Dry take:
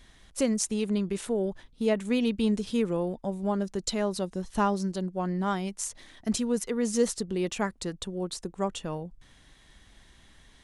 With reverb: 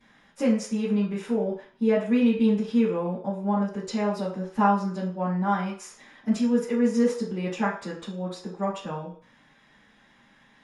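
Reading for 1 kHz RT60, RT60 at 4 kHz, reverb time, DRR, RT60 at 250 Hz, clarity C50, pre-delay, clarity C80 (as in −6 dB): 0.55 s, 0.55 s, 0.50 s, −12.5 dB, 0.40 s, 5.5 dB, 3 ms, 10.5 dB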